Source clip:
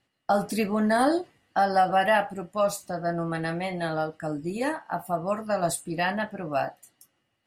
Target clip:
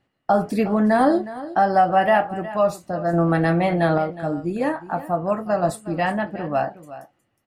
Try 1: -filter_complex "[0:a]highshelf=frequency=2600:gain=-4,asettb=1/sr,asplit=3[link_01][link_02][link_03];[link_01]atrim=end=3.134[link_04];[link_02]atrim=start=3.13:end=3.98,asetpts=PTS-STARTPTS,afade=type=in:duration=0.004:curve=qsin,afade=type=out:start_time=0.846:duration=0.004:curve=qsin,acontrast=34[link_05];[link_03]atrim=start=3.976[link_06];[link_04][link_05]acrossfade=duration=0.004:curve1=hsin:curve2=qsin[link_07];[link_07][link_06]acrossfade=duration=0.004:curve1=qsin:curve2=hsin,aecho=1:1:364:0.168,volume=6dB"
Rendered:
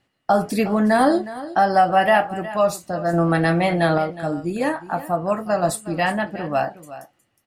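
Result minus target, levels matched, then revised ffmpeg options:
4,000 Hz band +5.0 dB
-filter_complex "[0:a]highshelf=frequency=2600:gain=-13.5,asettb=1/sr,asplit=3[link_01][link_02][link_03];[link_01]atrim=end=3.134[link_04];[link_02]atrim=start=3.13:end=3.98,asetpts=PTS-STARTPTS,afade=type=in:duration=0.004:curve=qsin,afade=type=out:start_time=0.846:duration=0.004:curve=qsin,acontrast=34[link_05];[link_03]atrim=start=3.976[link_06];[link_04][link_05]acrossfade=duration=0.004:curve1=hsin:curve2=qsin[link_07];[link_07][link_06]acrossfade=duration=0.004:curve1=qsin:curve2=hsin,aecho=1:1:364:0.168,volume=6dB"

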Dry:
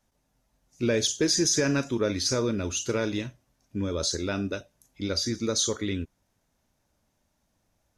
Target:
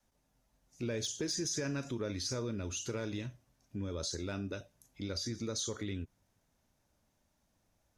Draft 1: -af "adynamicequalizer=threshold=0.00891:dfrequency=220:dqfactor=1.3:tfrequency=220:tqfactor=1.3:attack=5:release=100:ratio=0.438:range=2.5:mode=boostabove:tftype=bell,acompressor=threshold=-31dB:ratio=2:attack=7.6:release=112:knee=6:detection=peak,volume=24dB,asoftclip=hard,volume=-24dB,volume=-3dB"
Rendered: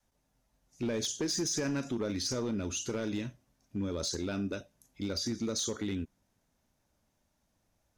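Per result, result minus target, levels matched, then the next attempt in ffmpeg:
125 Hz band −3.0 dB; downward compressor: peak gain reduction −3 dB
-af "adynamicequalizer=threshold=0.00891:dfrequency=110:dqfactor=1.3:tfrequency=110:tqfactor=1.3:attack=5:release=100:ratio=0.438:range=2.5:mode=boostabove:tftype=bell,acompressor=threshold=-31dB:ratio=2:attack=7.6:release=112:knee=6:detection=peak,volume=24dB,asoftclip=hard,volume=-24dB,volume=-3dB"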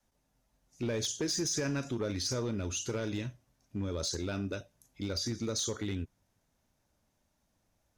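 downward compressor: peak gain reduction −4 dB
-af "adynamicequalizer=threshold=0.00891:dfrequency=110:dqfactor=1.3:tfrequency=110:tqfactor=1.3:attack=5:release=100:ratio=0.438:range=2.5:mode=boostabove:tftype=bell,acompressor=threshold=-38.5dB:ratio=2:attack=7.6:release=112:knee=6:detection=peak,volume=24dB,asoftclip=hard,volume=-24dB,volume=-3dB"

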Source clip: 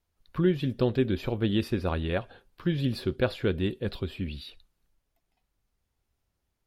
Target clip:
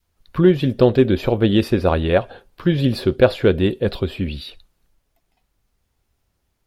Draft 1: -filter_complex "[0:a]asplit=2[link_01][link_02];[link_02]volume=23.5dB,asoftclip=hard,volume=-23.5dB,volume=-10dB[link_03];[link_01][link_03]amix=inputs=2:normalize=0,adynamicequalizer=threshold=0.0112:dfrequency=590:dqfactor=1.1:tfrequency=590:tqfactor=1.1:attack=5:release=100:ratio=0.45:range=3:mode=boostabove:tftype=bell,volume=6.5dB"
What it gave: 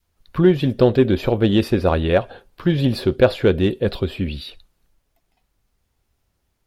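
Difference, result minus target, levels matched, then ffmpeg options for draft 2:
gain into a clipping stage and back: distortion +11 dB
-filter_complex "[0:a]asplit=2[link_01][link_02];[link_02]volume=17.5dB,asoftclip=hard,volume=-17.5dB,volume=-10dB[link_03];[link_01][link_03]amix=inputs=2:normalize=0,adynamicequalizer=threshold=0.0112:dfrequency=590:dqfactor=1.1:tfrequency=590:tqfactor=1.1:attack=5:release=100:ratio=0.45:range=3:mode=boostabove:tftype=bell,volume=6.5dB"

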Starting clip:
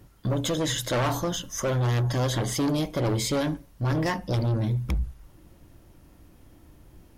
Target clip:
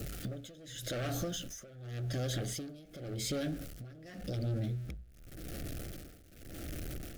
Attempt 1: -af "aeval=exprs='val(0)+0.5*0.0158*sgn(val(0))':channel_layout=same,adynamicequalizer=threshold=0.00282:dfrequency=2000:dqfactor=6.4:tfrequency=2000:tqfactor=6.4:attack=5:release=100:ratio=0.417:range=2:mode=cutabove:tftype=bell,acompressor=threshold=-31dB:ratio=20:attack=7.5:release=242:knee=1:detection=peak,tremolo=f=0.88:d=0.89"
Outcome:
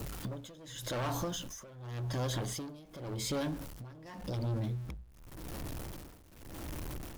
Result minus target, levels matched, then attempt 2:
1,000 Hz band +6.5 dB
-af "aeval=exprs='val(0)+0.5*0.0158*sgn(val(0))':channel_layout=same,adynamicequalizer=threshold=0.00282:dfrequency=2000:dqfactor=6.4:tfrequency=2000:tqfactor=6.4:attack=5:release=100:ratio=0.417:range=2:mode=cutabove:tftype=bell,asuperstop=centerf=970:order=4:qfactor=1.7,acompressor=threshold=-31dB:ratio=20:attack=7.5:release=242:knee=1:detection=peak,tremolo=f=0.88:d=0.89"

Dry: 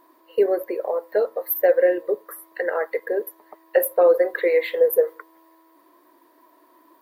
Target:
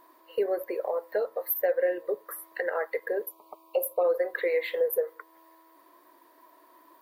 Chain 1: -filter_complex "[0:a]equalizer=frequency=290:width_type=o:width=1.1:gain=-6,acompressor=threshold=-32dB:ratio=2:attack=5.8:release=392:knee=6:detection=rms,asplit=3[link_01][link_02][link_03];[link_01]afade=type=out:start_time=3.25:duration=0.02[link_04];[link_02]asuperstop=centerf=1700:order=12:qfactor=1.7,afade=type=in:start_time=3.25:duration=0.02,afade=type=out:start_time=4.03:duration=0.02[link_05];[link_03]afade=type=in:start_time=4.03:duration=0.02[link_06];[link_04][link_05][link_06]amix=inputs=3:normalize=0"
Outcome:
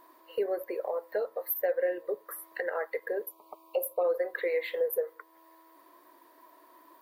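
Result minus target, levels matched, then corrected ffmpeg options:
downward compressor: peak gain reduction +3 dB
-filter_complex "[0:a]equalizer=frequency=290:width_type=o:width=1.1:gain=-6,acompressor=threshold=-26dB:ratio=2:attack=5.8:release=392:knee=6:detection=rms,asplit=3[link_01][link_02][link_03];[link_01]afade=type=out:start_time=3.25:duration=0.02[link_04];[link_02]asuperstop=centerf=1700:order=12:qfactor=1.7,afade=type=in:start_time=3.25:duration=0.02,afade=type=out:start_time=4.03:duration=0.02[link_05];[link_03]afade=type=in:start_time=4.03:duration=0.02[link_06];[link_04][link_05][link_06]amix=inputs=3:normalize=0"

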